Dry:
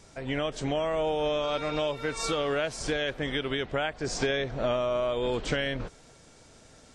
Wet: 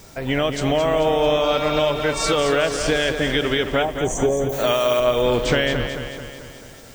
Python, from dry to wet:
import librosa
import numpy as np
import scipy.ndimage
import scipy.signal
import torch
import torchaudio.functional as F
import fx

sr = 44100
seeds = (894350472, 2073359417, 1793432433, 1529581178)

y = fx.spec_box(x, sr, start_s=3.83, length_s=0.69, low_hz=1200.0, high_hz=5800.0, gain_db=-27)
y = fx.dmg_noise_colour(y, sr, seeds[0], colour='violet', level_db=-63.0)
y = fx.riaa(y, sr, side='recording', at=(4.49, 5.0))
y = fx.echo_feedback(y, sr, ms=219, feedback_pct=55, wet_db=-8)
y = F.gain(torch.from_numpy(y), 9.0).numpy()